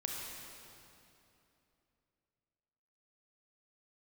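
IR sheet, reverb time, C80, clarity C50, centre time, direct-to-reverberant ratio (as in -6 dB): 2.9 s, 1.0 dB, -0.5 dB, 133 ms, -1.5 dB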